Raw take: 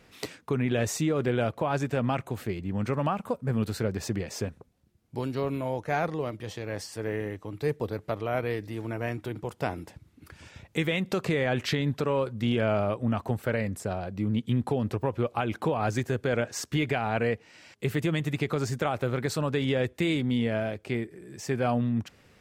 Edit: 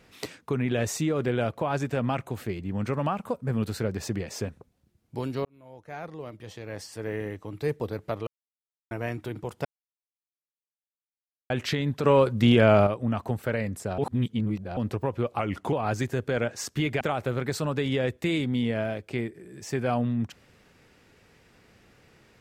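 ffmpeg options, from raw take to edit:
ffmpeg -i in.wav -filter_complex "[0:a]asplit=13[link_01][link_02][link_03][link_04][link_05][link_06][link_07][link_08][link_09][link_10][link_11][link_12][link_13];[link_01]atrim=end=5.45,asetpts=PTS-STARTPTS,afade=type=out:start_time=5.446:duration=0.004:curve=hsin[link_14];[link_02]atrim=start=5.45:end=8.27,asetpts=PTS-STARTPTS,afade=type=in:duration=1.84,afade=type=out:start_time=2.816:duration=0.004:curve=hsin[link_15];[link_03]atrim=start=8.27:end=8.91,asetpts=PTS-STARTPTS,volume=0[link_16];[link_04]atrim=start=8.91:end=9.65,asetpts=PTS-STARTPTS,afade=type=in:duration=0.004:curve=hsin,afade=type=out:start_time=0.736:duration=0.004:curve=hsin[link_17];[link_05]atrim=start=9.65:end=11.5,asetpts=PTS-STARTPTS,volume=0[link_18];[link_06]atrim=start=11.5:end=12.042,asetpts=PTS-STARTPTS,afade=type=in:duration=0.004:curve=hsin[link_19];[link_07]atrim=start=12.038:end=12.872,asetpts=PTS-STARTPTS,volume=7.5dB[link_20];[link_08]atrim=start=12.868:end=13.982[link_21];[link_09]atrim=start=13.978:end=14.772,asetpts=PTS-STARTPTS,areverse[link_22];[link_10]atrim=start=14.768:end=15.394[link_23];[link_11]atrim=start=15.39:end=15.69,asetpts=PTS-STARTPTS,asetrate=39249,aresample=44100,atrim=end_sample=14865,asetpts=PTS-STARTPTS[link_24];[link_12]atrim=start=15.686:end=16.972[link_25];[link_13]atrim=start=18.768[link_26];[link_14][link_15][link_16][link_17][link_18][link_19]concat=n=6:v=0:a=1[link_27];[link_27][link_20]acrossfade=duration=0.004:curve1=hsin:curve2=hsin[link_28];[link_28][link_21]acrossfade=duration=0.004:curve1=hsin:curve2=hsin[link_29];[link_29][link_22]acrossfade=duration=0.004:curve1=hsin:curve2=hsin[link_30];[link_30][link_23]acrossfade=duration=0.004:curve1=hsin:curve2=hsin[link_31];[link_31][link_24]acrossfade=duration=0.004:curve1=hsin:curve2=hsin[link_32];[link_32][link_25]acrossfade=duration=0.004:curve1=hsin:curve2=hsin[link_33];[link_33][link_26]acrossfade=duration=0.004:curve1=hsin:curve2=hsin" out.wav

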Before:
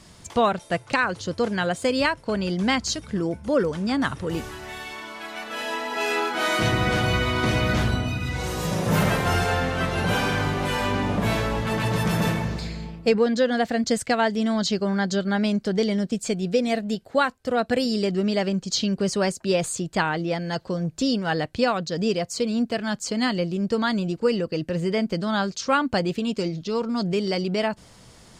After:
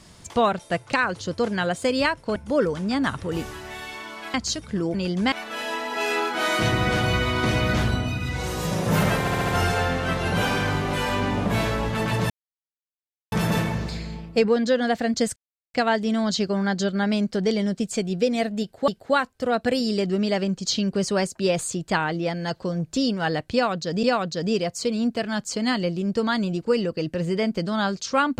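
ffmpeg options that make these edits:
ffmpeg -i in.wav -filter_complex "[0:a]asplit=13[link_01][link_02][link_03][link_04][link_05][link_06][link_07][link_08][link_09][link_10][link_11][link_12][link_13];[link_01]atrim=end=2.362[link_14];[link_02]atrim=start=3.338:end=5.322[link_15];[link_03]atrim=start=2.738:end=3.342[link_16];[link_04]atrim=start=2.358:end=2.742[link_17];[link_05]atrim=start=5.318:end=9.272[link_18];[link_06]atrim=start=9.198:end=9.272[link_19];[link_07]atrim=start=9.198:end=9.272[link_20];[link_08]atrim=start=9.198:end=9.272[link_21];[link_09]atrim=start=9.198:end=12.02,asetpts=PTS-STARTPTS,afade=type=out:start_time=2.818:duration=0.004:curve=hsin,apad=pad_dur=1.02[link_22];[link_10]atrim=start=12.02:end=14.06,asetpts=PTS-STARTPTS,afade=type=in:duration=0.004:curve=hsin,afade=type=out:start_time=2.036:duration=0.004:curve=hsin,apad=pad_dur=0.38[link_23];[link_11]atrim=start=14.06:end=17.202,asetpts=PTS-STARTPTS,afade=type=in:duration=0.004:curve=hsin[link_24];[link_12]atrim=start=16.928:end=22.082[link_25];[link_13]atrim=start=21.578[link_26];[link_14][link_15]acrossfade=duration=0.004:curve1=hsin:curve2=hsin[link_27];[link_27][link_16]acrossfade=duration=0.004:curve1=hsin:curve2=hsin[link_28];[link_28][link_17]acrossfade=duration=0.004:curve1=hsin:curve2=hsin[link_29];[link_29][link_18]acrossfade=duration=0.004:curve1=hsin:curve2=hsin[link_30];[link_30][link_19]acrossfade=duration=0.004:curve1=hsin:curve2=hsin[link_31];[link_31][link_20]acrossfade=duration=0.004:curve1=hsin:curve2=hsin[link_32];[link_32][link_21]acrossfade=duration=0.004:curve1=hsin:curve2=hsin[link_33];[link_22][link_23][link_24]concat=n=3:v=0:a=1[link_34];[link_33][link_34]acrossfade=duration=0.004:curve1=hsin:curve2=hsin[link_35];[link_35][link_25]acrossfade=duration=0.004:curve1=hsin:curve2=hsin[link_36];[link_36][link_26]acrossfade=duration=0.004:curve1=hsin:curve2=hsin" out.wav

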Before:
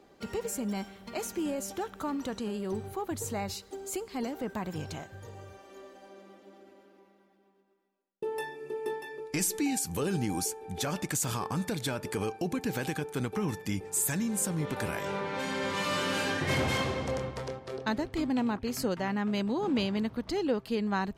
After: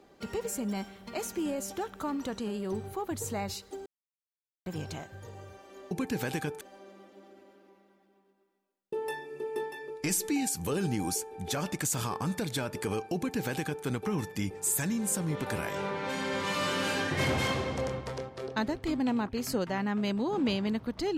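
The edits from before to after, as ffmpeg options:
ffmpeg -i in.wav -filter_complex "[0:a]asplit=5[link_01][link_02][link_03][link_04][link_05];[link_01]atrim=end=3.86,asetpts=PTS-STARTPTS,afade=type=out:start_time=3.856:duration=0.004:curve=hsin[link_06];[link_02]atrim=start=3.86:end=4.66,asetpts=PTS-STARTPTS,volume=0[link_07];[link_03]atrim=start=4.66:end=5.912,asetpts=PTS-STARTPTS,afade=type=in:duration=0.004:curve=hsin[link_08];[link_04]atrim=start=12.448:end=13.152[link_09];[link_05]atrim=start=5.908[link_10];[link_06][link_07][link_08]concat=n=3:v=0:a=1[link_11];[link_11][link_09]acrossfade=duration=0.004:curve1=hsin:curve2=hsin[link_12];[link_12][link_10]acrossfade=duration=0.004:curve1=hsin:curve2=hsin" out.wav

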